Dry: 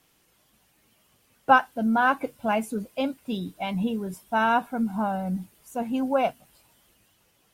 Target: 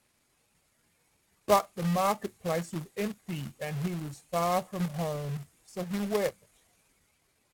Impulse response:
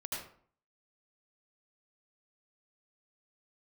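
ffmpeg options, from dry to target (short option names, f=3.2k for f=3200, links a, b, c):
-af "acrusher=bits=2:mode=log:mix=0:aa=0.000001,asetrate=34006,aresample=44100,atempo=1.29684,volume=-6dB"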